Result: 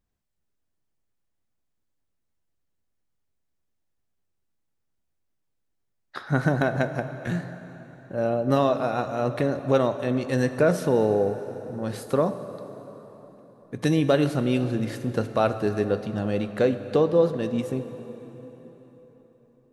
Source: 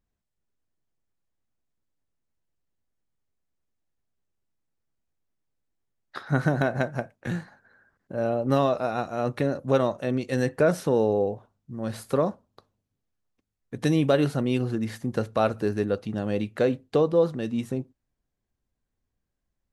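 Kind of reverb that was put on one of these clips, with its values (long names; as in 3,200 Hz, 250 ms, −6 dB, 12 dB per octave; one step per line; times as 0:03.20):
dense smooth reverb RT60 4.4 s, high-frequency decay 0.75×, DRR 10 dB
level +1 dB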